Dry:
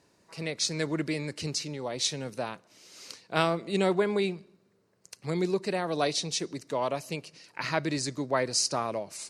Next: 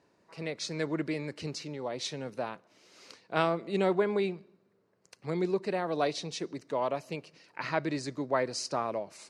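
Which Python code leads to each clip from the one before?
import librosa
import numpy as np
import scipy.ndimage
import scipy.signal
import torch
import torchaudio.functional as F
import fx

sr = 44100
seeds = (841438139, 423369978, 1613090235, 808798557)

y = fx.lowpass(x, sr, hz=1900.0, slope=6)
y = fx.low_shelf(y, sr, hz=150.0, db=-8.0)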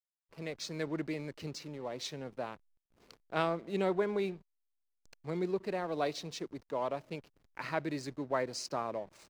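y = fx.backlash(x, sr, play_db=-44.5)
y = y * 10.0 ** (-4.0 / 20.0)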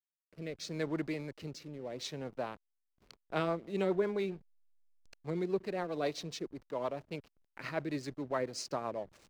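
y = fx.rotary_switch(x, sr, hz=0.75, then_hz=7.5, switch_at_s=2.73)
y = fx.backlash(y, sr, play_db=-57.5)
y = y * 10.0 ** (1.5 / 20.0)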